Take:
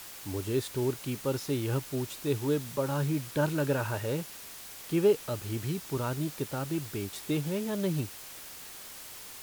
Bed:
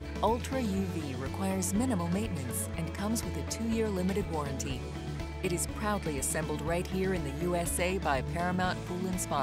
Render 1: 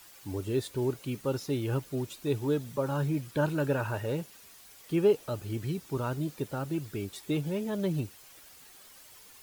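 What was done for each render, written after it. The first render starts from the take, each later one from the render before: denoiser 10 dB, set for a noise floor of -46 dBFS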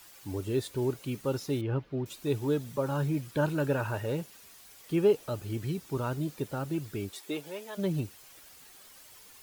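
1.61–2.06 air absorption 320 m; 7.1–7.77 HPF 240 Hz -> 850 Hz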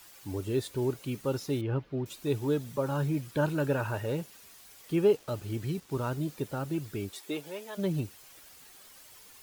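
5.16–6.1 switching dead time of 0.05 ms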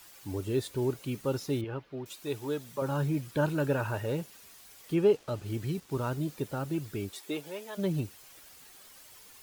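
1.64–2.82 low shelf 330 Hz -10.5 dB; 4.94–5.46 high shelf 9900 Hz -9 dB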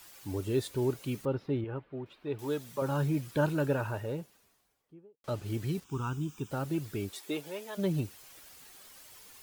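1.25–2.39 air absorption 420 m; 3.36–5.24 studio fade out; 5.84–6.51 fixed phaser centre 2900 Hz, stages 8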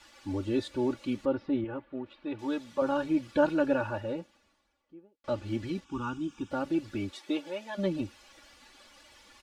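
LPF 4600 Hz 12 dB/oct; comb 3.5 ms, depth 95%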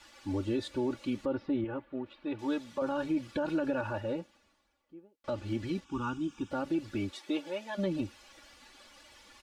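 limiter -23 dBFS, peak gain reduction 10.5 dB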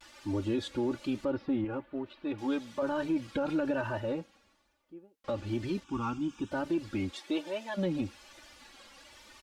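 in parallel at -12 dB: hard clip -37.5 dBFS, distortion -5 dB; on the sum: vibrato 1.1 Hz 78 cents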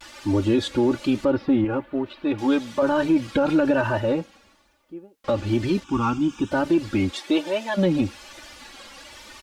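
gain +11 dB

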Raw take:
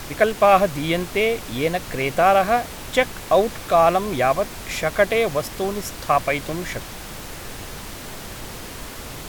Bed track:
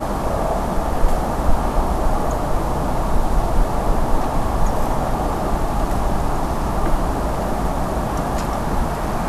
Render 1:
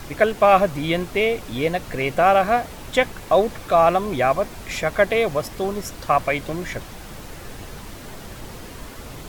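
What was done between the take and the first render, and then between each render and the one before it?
denoiser 6 dB, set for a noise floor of -36 dBFS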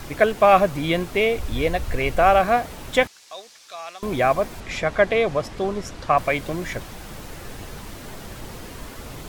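1.37–2.4 resonant low shelf 100 Hz +11.5 dB, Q 1.5; 3.07–4.03 band-pass 5500 Hz, Q 1.6; 4.6–6.18 air absorption 62 m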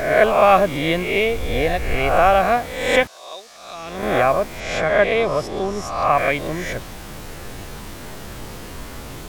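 spectral swells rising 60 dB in 0.83 s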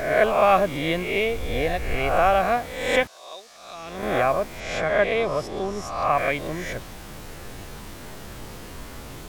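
gain -4.5 dB

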